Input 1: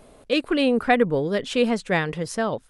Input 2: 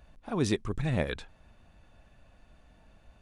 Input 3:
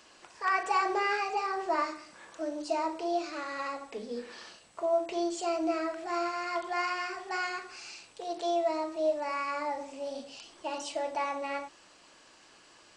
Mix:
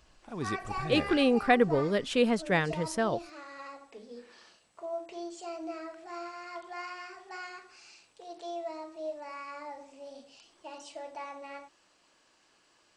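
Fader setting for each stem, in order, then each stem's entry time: −4.5, −8.0, −9.0 decibels; 0.60, 0.00, 0.00 seconds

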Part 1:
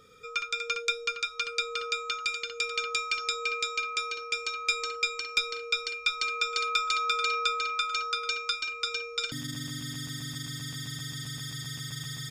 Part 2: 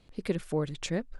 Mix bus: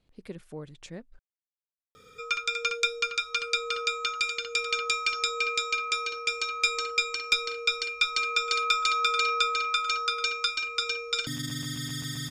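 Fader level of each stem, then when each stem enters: +2.5, −10.5 decibels; 1.95, 0.00 seconds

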